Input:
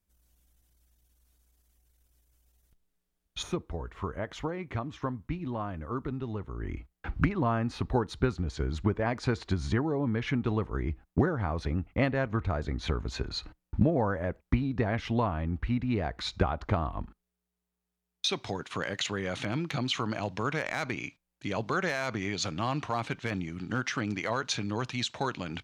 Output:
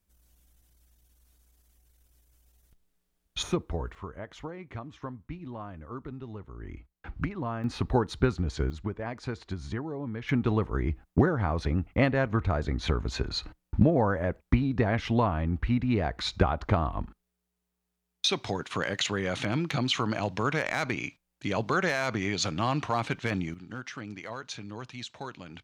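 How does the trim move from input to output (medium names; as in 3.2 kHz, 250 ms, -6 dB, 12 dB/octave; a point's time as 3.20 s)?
+4 dB
from 3.95 s -5.5 dB
from 7.64 s +2.5 dB
from 8.70 s -6 dB
from 10.29 s +3 dB
from 23.54 s -8 dB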